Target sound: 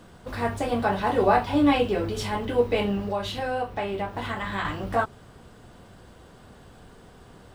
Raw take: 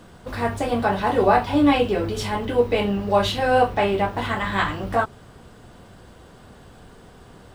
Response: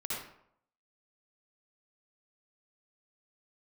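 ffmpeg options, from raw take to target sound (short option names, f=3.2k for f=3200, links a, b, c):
-filter_complex "[0:a]asettb=1/sr,asplit=3[a][b][c];[a]atrim=end=3.064[d];[b]atrim=start=3.06:end=4.65,asetpts=PTS-STARTPTS,afade=t=in:d=0.004:c=qsin,afade=t=out:st=1.586:d=0.004:c=qsin,acompressor=threshold=-25dB:ratio=2.5[e];[c]atrim=start=4.646[f];[d][e]acrossfade=d=0.004:c1=hsin:c2=qsin[g];[g][f]acrossfade=d=0.004:c1=qsin:c2=hsin,volume=-3dB"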